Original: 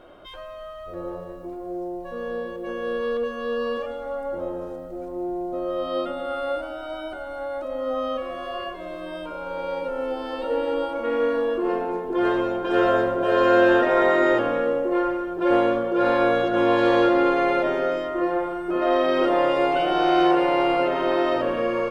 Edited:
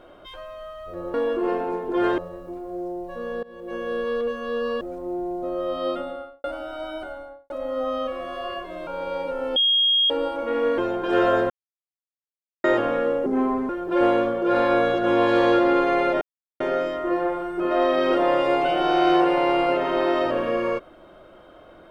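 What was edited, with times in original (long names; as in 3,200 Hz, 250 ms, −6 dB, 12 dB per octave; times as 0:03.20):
0:02.39–0:02.72: fade in, from −23 dB
0:03.77–0:04.91: remove
0:06.06–0:06.54: fade out and dull
0:07.12–0:07.60: fade out and dull
0:08.97–0:09.44: remove
0:10.13–0:10.67: beep over 3,260 Hz −16 dBFS
0:11.35–0:12.39: move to 0:01.14
0:13.11–0:14.25: silence
0:14.87–0:15.19: play speed 74%
0:17.71: splice in silence 0.39 s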